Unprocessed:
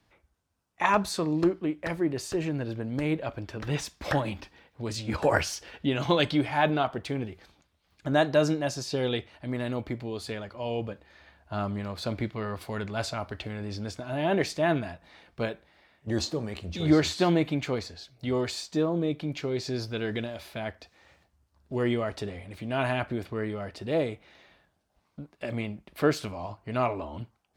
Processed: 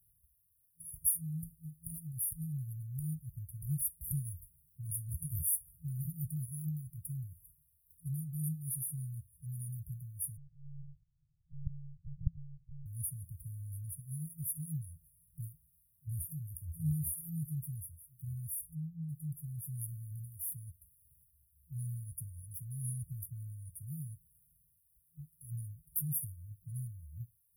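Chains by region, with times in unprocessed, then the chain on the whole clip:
10.37–12.86 s: rippled Chebyshev low-pass 1.2 kHz, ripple 9 dB + overload inside the chain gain 28 dB + monotone LPC vocoder at 8 kHz 140 Hz
18.61–19.09 s: low-pass 1 kHz 6 dB/octave + upward compressor, threshold -29 dBFS
whole clip: pre-emphasis filter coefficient 0.9; FFT band-reject 170–9500 Hz; trim +16 dB

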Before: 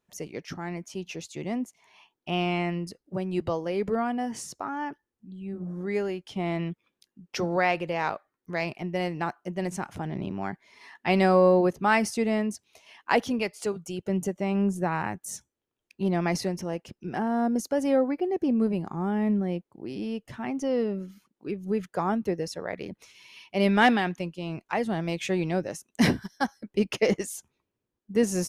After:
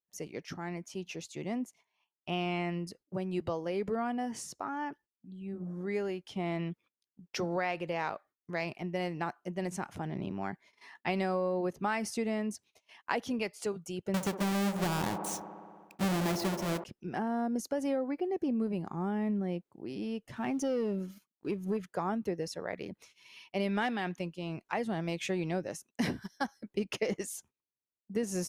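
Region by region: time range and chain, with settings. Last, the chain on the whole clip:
14.14–16.84 s: square wave that keeps the level + feedback echo behind a band-pass 61 ms, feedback 81%, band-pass 560 Hz, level -9.5 dB
20.36–21.77 s: treble shelf 7.6 kHz +6 dB + band-stop 2 kHz, Q 19 + waveshaping leveller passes 1
whole clip: bass shelf 64 Hz -5 dB; gate -52 dBFS, range -19 dB; compression, threshold -24 dBFS; trim -4 dB

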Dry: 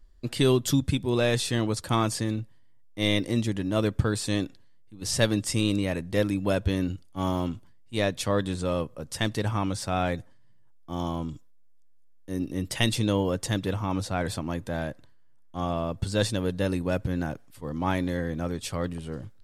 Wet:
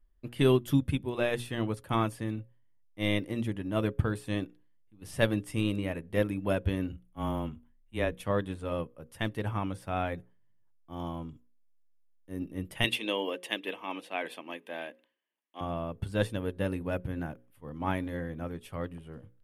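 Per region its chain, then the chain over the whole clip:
6.92–8.20 s: frequency shift -18 Hz + peaking EQ 4.7 kHz -13 dB 0.28 oct
12.84–15.61 s: high-pass 280 Hz 24 dB/octave + peaking EQ 2.8 kHz +12.5 dB 1.1 oct + band-stop 1.4 kHz, Q 6.4
whole clip: high-order bell 5.6 kHz -12 dB 1.3 oct; hum notches 60/120/180/240/300/360/420/480/540 Hz; upward expansion 1.5:1, over -40 dBFS; trim -1 dB

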